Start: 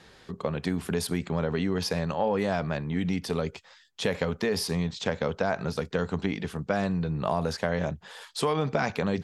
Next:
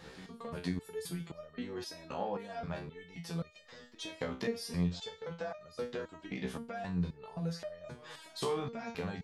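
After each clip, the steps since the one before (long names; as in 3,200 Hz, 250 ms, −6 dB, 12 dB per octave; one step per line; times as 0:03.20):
backwards echo 491 ms −23 dB
downward compressor 3 to 1, threshold −35 dBFS, peak gain reduction 10.5 dB
step-sequenced resonator 3.8 Hz 64–610 Hz
level +8 dB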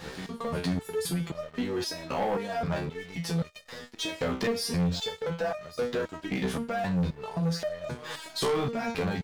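leveller curve on the samples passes 3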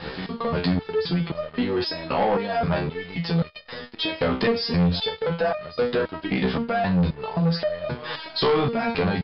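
Chebyshev low-pass filter 5,100 Hz, order 8
level +7.5 dB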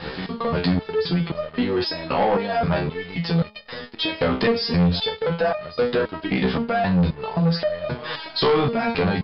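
hum removal 212.3 Hz, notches 5
level +2 dB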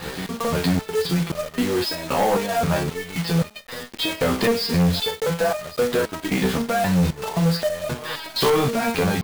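one scale factor per block 3 bits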